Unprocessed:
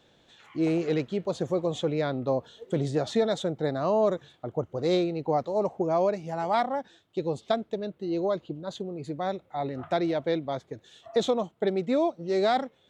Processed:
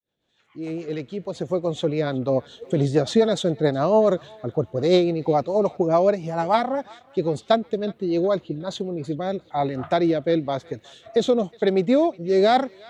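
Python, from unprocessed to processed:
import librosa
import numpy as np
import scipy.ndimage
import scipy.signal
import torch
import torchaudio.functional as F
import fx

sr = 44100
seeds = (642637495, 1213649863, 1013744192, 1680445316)

y = fx.fade_in_head(x, sr, length_s=2.64)
y = fx.rotary_switch(y, sr, hz=7.0, then_hz=1.0, switch_at_s=7.84)
y = fx.echo_banded(y, sr, ms=366, feedback_pct=59, hz=2300.0, wet_db=-20.0)
y = F.gain(torch.from_numpy(y), 8.5).numpy()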